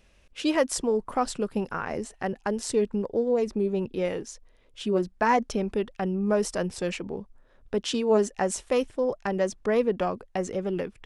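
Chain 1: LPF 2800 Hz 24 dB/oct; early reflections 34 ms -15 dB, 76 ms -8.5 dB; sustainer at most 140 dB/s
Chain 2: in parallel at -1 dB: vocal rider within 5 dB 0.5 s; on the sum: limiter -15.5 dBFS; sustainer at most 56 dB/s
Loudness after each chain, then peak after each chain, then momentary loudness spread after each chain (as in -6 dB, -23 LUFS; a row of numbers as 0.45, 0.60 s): -27.0, -25.0 LUFS; -9.0, -10.0 dBFS; 8, 5 LU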